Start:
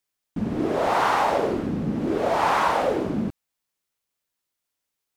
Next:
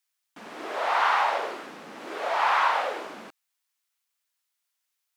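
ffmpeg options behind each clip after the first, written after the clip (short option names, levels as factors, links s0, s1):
-filter_complex "[0:a]highpass=1000,acrossover=split=4500[s0][s1];[s1]acompressor=threshold=0.00178:ratio=4:attack=1:release=60[s2];[s0][s2]amix=inputs=2:normalize=0,volume=1.26"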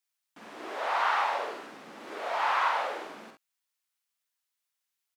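-af "aecho=1:1:49|67:0.501|0.335,volume=0.531"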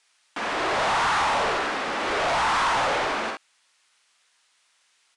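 -filter_complex "[0:a]asplit=2[s0][s1];[s1]highpass=f=720:p=1,volume=56.2,asoftclip=type=tanh:threshold=0.211[s2];[s0][s2]amix=inputs=2:normalize=0,lowpass=f=3900:p=1,volume=0.501,aresample=22050,aresample=44100,volume=0.708"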